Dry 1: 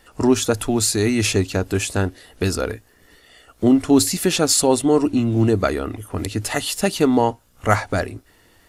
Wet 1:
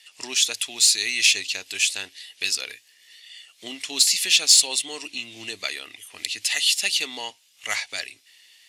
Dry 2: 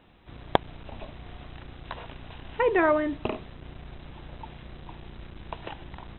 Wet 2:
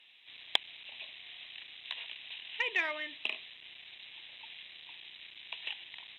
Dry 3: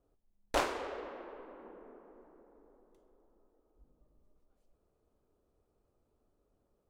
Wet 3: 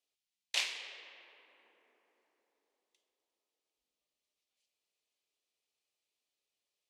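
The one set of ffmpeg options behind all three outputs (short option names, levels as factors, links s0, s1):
-af "bandpass=f=1600:t=q:w=0.85:csg=0,aexciter=amount=13.2:drive=8.2:freq=2200,volume=0.224"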